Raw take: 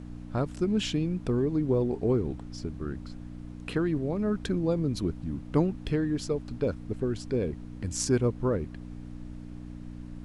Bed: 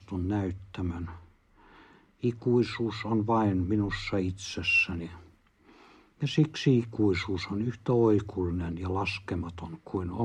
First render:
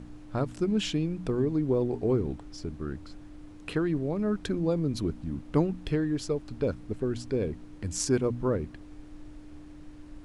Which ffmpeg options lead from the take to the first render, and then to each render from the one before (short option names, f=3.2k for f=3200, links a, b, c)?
-af "bandreject=f=60:t=h:w=4,bandreject=f=120:t=h:w=4,bandreject=f=180:t=h:w=4,bandreject=f=240:t=h:w=4"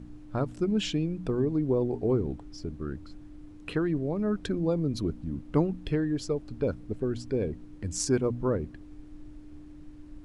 -af "afftdn=nr=6:nf=-47"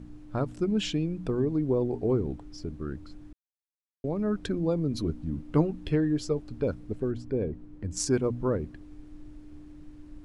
-filter_complex "[0:a]asettb=1/sr,asplit=3[a][b][c];[a]atrim=end=4.904[d];[b]atrim=start=4.9:end=6.41,asetpts=PTS-STARTPTS,afade=t=in:d=0.004:c=qsin,afade=t=out:st=1.506:d=0.004:c=qsin,asplit=2[e][f];[f]adelay=13,volume=-9dB[g];[e][g]amix=inputs=2:normalize=0,atrim=end_sample=66591[h];[c]atrim=start=6.406[i];[d][h]acrossfade=d=0.004:c1=hsin:c2=qsin[j];[j][i]acrossfade=d=0.004:c1=qsin:c2=hsin,asettb=1/sr,asplit=3[k][l][m];[k]atrim=end=7.114[n];[l]atrim=start=7.11:end=7.97,asetpts=PTS-STARTPTS,afade=t=in:d=0.004:c=qsin,afade=t=out:st=0.856:d=0.004:c=qsin,highshelf=f=2.3k:g=-11.5[o];[m]atrim=start=7.966[p];[n][o]acrossfade=d=0.004:c1=hsin:c2=qsin[q];[q][p]acrossfade=d=0.004:c1=qsin:c2=hsin,asplit=3[r][s][t];[r]atrim=end=3.33,asetpts=PTS-STARTPTS,afade=t=out:st=3.326:d=0.004:c=hsin[u];[s]atrim=start=3.33:end=4.04,asetpts=PTS-STARTPTS,volume=0[v];[t]atrim=start=4.04,asetpts=PTS-STARTPTS,afade=t=in:d=0.004:c=hsin[w];[u][v][w]concat=n=3:v=0:a=1"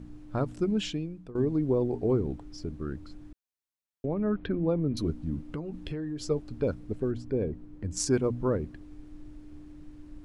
-filter_complex "[0:a]asettb=1/sr,asplit=3[a][b][c];[a]atrim=end=4.054[d];[b]atrim=start=4.05:end=4.97,asetpts=PTS-STARTPTS,afade=t=in:d=0.004:c=qsin,afade=t=out:st=0.916:d=0.004:c=qsin,lowpass=f=3.1k:w=0.5412,lowpass=f=3.1k:w=1.3066[e];[c]atrim=start=4.966[f];[d][e]acrossfade=d=0.004:c1=hsin:c2=qsin[g];[g][f]acrossfade=d=0.004:c1=qsin:c2=hsin,asettb=1/sr,asplit=3[h][i][j];[h]atrim=end=5.494[k];[i]atrim=start=5.49:end=6.25,asetpts=PTS-STARTPTS,afade=t=in:d=0.004:c=qsin,afade=t=out:st=0.756:d=0.004:c=qsin,acompressor=threshold=-31dB:ratio=8:attack=3.2:release=140:knee=1:detection=peak[l];[j]atrim=start=6.246[m];[k][l]acrossfade=d=0.004:c1=hsin:c2=qsin[n];[n][m]acrossfade=d=0.004:c1=qsin:c2=hsin,asplit=2[o][p];[o]atrim=end=1.35,asetpts=PTS-STARTPTS,afade=t=out:st=0.66:d=0.69:silence=0.11885[q];[p]atrim=start=1.35,asetpts=PTS-STARTPTS,afade=t=in:d=0.004:c=hsin:silence=0.11885[r];[q][r]concat=n=2:v=0:a=1"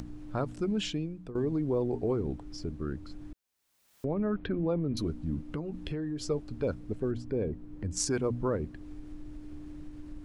-filter_complex "[0:a]acrossover=split=550|2300[a][b][c];[a]alimiter=level_in=0.5dB:limit=-24dB:level=0:latency=1,volume=-0.5dB[d];[d][b][c]amix=inputs=3:normalize=0,acompressor=mode=upward:threshold=-36dB:ratio=2.5"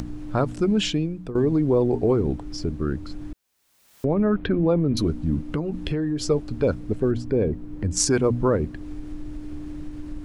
-af "volume=9.5dB"